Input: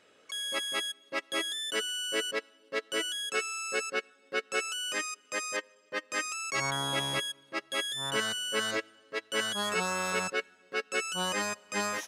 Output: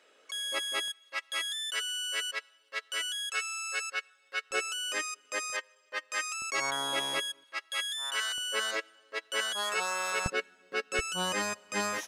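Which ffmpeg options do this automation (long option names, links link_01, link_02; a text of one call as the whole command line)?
ffmpeg -i in.wav -af "asetnsamples=nb_out_samples=441:pad=0,asendcmd='0.88 highpass f 1100;4.51 highpass f 330;5.5 highpass f 700;6.42 highpass f 320;7.44 highpass f 1100;8.38 highpass f 520;10.26 highpass f 140;10.99 highpass f 59',highpass=370" out.wav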